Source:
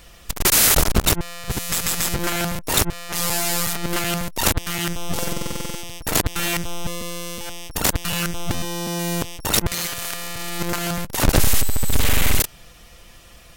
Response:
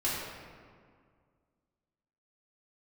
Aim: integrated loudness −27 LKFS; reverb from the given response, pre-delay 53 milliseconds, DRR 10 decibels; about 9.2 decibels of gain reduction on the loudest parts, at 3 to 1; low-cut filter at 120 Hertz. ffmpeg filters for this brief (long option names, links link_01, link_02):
-filter_complex "[0:a]highpass=120,acompressor=threshold=-25dB:ratio=3,asplit=2[link_01][link_02];[1:a]atrim=start_sample=2205,adelay=53[link_03];[link_02][link_03]afir=irnorm=-1:irlink=0,volume=-18dB[link_04];[link_01][link_04]amix=inputs=2:normalize=0,volume=0.5dB"